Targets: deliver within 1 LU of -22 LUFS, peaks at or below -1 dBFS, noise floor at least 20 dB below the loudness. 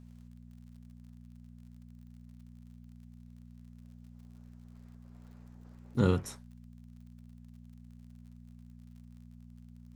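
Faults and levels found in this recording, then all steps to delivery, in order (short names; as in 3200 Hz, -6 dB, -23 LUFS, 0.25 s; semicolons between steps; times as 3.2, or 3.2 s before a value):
ticks 47/s; hum 60 Hz; harmonics up to 240 Hz; hum level -49 dBFS; loudness -32.0 LUFS; peak -13.5 dBFS; loudness target -22.0 LUFS
-> de-click; de-hum 60 Hz, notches 4; gain +10 dB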